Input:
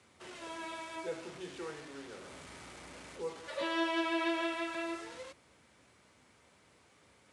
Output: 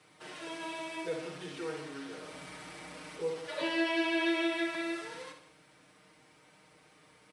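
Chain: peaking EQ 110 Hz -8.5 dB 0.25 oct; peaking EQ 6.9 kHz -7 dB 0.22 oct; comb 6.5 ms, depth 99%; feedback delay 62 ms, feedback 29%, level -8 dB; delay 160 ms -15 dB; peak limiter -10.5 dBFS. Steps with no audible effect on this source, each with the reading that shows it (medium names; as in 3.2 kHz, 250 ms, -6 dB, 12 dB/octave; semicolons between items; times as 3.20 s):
peak limiter -10.5 dBFS: peak at its input -19.5 dBFS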